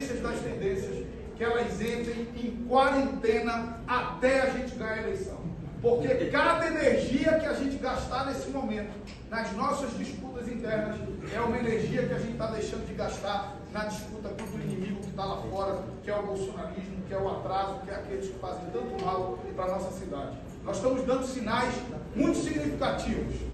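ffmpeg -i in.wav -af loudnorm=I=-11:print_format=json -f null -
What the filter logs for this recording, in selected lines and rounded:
"input_i" : "-30.7",
"input_tp" : "-9.9",
"input_lra" : "6.5",
"input_thresh" : "-40.7",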